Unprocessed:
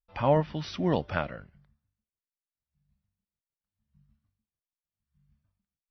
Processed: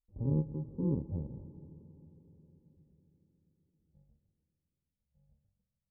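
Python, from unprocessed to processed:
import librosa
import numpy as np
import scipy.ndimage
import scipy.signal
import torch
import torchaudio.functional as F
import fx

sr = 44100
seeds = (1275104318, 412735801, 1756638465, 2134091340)

y = fx.bit_reversed(x, sr, seeds[0], block=64)
y = scipy.ndimage.gaussian_filter1d(y, 16.0, mode='constant')
y = fx.rev_freeverb(y, sr, rt60_s=4.4, hf_ratio=0.3, predelay_ms=45, drr_db=15.0)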